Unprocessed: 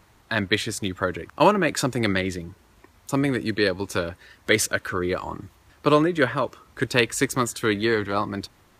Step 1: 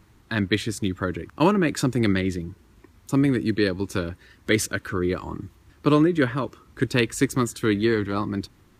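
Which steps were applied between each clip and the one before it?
FFT filter 330 Hz 0 dB, 630 Hz -11 dB, 1.2 kHz -7 dB; trim +3.5 dB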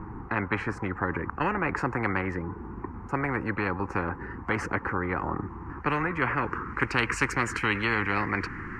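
static phaser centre 1.5 kHz, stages 4; low-pass sweep 820 Hz -> 1.8 kHz, 5.39–7.22 s; spectrum-flattening compressor 4:1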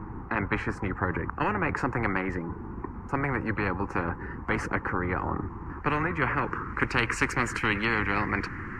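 octave divider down 1 oct, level -5 dB; AAC 96 kbps 44.1 kHz

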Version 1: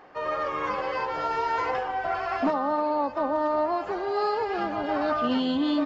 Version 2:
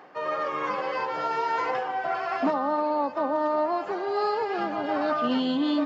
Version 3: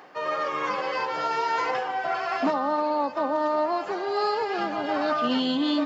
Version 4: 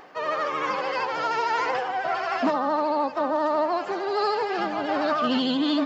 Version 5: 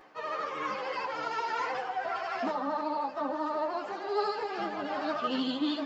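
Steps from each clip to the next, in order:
reverse; upward compressor, threshold -33 dBFS; reverse; high-pass 130 Hz 24 dB/octave
treble shelf 2.9 kHz +8.5 dB
vibrato 13 Hz 59 cents; trim +1 dB
on a send at -17 dB: reverberation RT60 4.2 s, pre-delay 70 ms; on the sum: three-phase chorus; trim -4.5 dB

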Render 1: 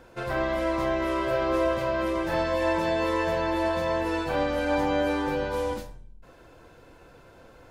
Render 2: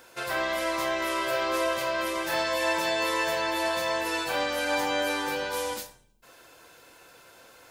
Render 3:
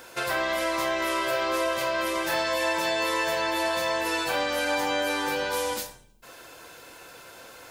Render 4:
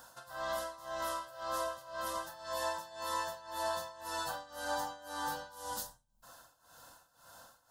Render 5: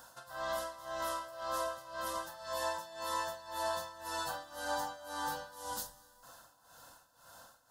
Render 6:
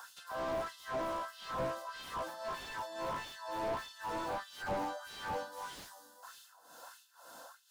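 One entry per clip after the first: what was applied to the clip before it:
tilt EQ +4 dB/octave
compression 2:1, threshold -34 dBFS, peak gain reduction 7 dB; trim +6.5 dB
tremolo 1.9 Hz, depth 88%; static phaser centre 960 Hz, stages 4; trim -5 dB
plate-style reverb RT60 2.8 s, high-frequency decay 0.8×, pre-delay 120 ms, DRR 18.5 dB
LFO high-pass sine 1.6 Hz 250–3100 Hz; slew-rate limiter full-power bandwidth 12 Hz; trim +2.5 dB

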